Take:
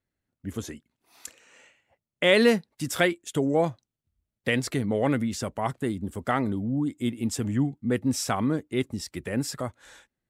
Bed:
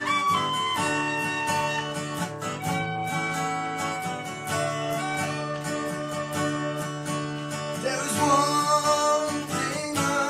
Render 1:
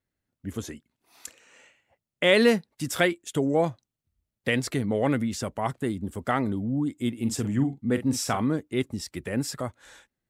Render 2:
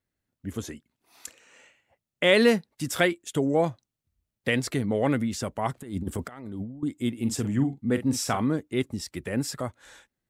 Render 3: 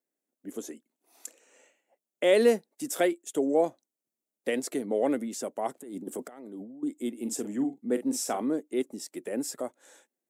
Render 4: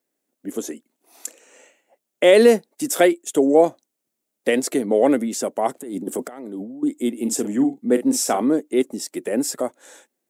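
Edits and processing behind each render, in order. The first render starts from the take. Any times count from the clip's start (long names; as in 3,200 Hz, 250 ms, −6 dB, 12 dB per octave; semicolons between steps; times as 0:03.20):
0:07.17–0:08.42: double-tracking delay 44 ms −10.5 dB
0:05.76–0:06.83: compressor whose output falls as the input rises −33 dBFS, ratio −0.5
high-pass filter 270 Hz 24 dB per octave; flat-topped bell 2,200 Hz −9 dB 2.7 octaves
level +10 dB; brickwall limiter −3 dBFS, peak gain reduction 2.5 dB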